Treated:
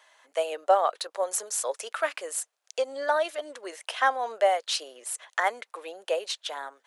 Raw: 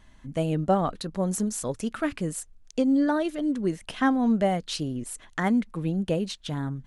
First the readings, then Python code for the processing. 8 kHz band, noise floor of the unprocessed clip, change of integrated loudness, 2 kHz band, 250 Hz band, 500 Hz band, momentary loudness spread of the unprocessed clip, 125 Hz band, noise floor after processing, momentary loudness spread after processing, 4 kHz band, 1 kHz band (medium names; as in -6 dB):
+4.0 dB, -55 dBFS, -1.5 dB, +4.0 dB, -26.0 dB, +1.5 dB, 9 LU, under -40 dB, -78 dBFS, 12 LU, +4.0 dB, +4.0 dB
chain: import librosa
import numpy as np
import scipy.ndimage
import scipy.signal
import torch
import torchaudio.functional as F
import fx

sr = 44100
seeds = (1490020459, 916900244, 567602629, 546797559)

y = scipy.signal.sosfilt(scipy.signal.butter(6, 510.0, 'highpass', fs=sr, output='sos'), x)
y = y * librosa.db_to_amplitude(4.0)